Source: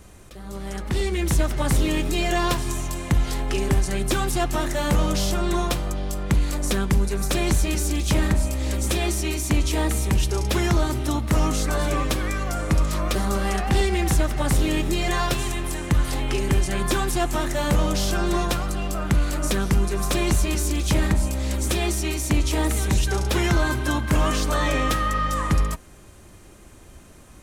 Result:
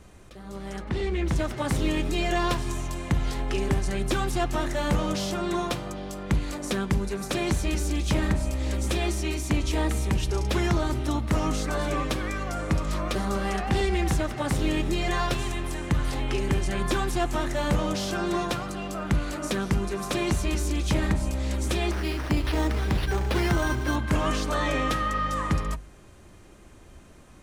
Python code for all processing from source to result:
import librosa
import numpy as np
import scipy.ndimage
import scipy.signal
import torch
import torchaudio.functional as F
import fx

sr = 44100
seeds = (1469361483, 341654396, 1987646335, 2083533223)

y = fx.chain(x, sr, fx.high_shelf(hz=6000.0, db=-12.0),
    fx.doppler_dist(depth_ms=0.14), at=(0.84, 1.36))
y = fx.chain(y, sr, fx.lowpass(hz=7500.0, slope=24),
    fx.resample_bad(factor=6, down='none', up='hold'), at=(21.91, 23.96))
y = fx.high_shelf(y, sr, hz=8200.0, db=-11.0)
y = fx.hum_notches(y, sr, base_hz=50, count=3)
y = y * librosa.db_to_amplitude(-2.5)